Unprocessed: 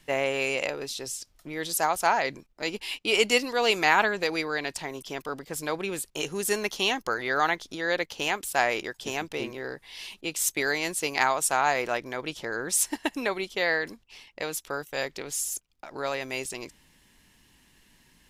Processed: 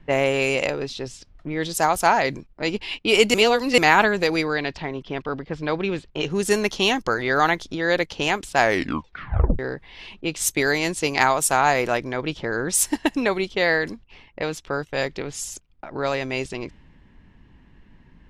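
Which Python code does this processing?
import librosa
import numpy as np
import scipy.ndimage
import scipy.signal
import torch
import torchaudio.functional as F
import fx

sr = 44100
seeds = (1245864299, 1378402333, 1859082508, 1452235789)

y = fx.cheby1_lowpass(x, sr, hz=4200.0, order=2, at=(4.53, 6.3))
y = fx.edit(y, sr, fx.reverse_span(start_s=3.34, length_s=0.44),
    fx.tape_stop(start_s=8.6, length_s=0.99), tone=tone)
y = fx.env_lowpass(y, sr, base_hz=1700.0, full_db=-22.5)
y = fx.low_shelf(y, sr, hz=260.0, db=10.5)
y = y * 10.0 ** (4.5 / 20.0)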